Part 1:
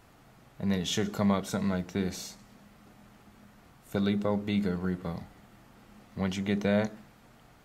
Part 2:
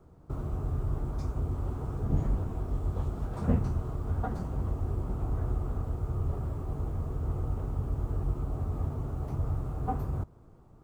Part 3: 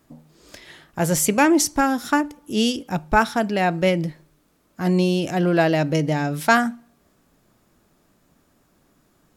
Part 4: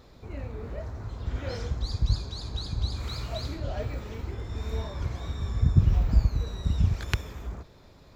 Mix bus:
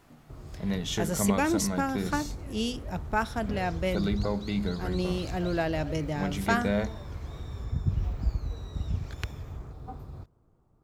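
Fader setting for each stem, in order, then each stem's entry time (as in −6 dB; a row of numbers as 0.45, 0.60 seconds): −1.5, −10.0, −10.5, −7.5 decibels; 0.00, 0.00, 0.00, 2.10 seconds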